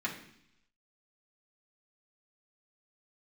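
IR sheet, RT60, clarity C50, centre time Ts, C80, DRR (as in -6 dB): 0.70 s, 8.5 dB, 21 ms, 11.5 dB, -5.0 dB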